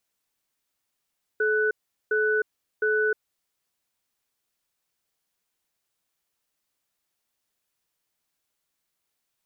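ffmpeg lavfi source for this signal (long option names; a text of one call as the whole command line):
ffmpeg -f lavfi -i "aevalsrc='0.0708*(sin(2*PI*430*t)+sin(2*PI*1490*t))*clip(min(mod(t,0.71),0.31-mod(t,0.71))/0.005,0,1)':duration=2.07:sample_rate=44100" out.wav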